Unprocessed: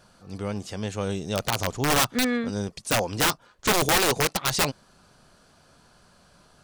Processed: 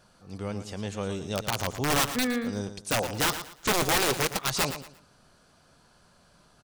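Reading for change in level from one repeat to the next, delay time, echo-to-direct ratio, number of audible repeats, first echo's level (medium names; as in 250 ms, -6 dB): -11.0 dB, 115 ms, -10.5 dB, 3, -11.0 dB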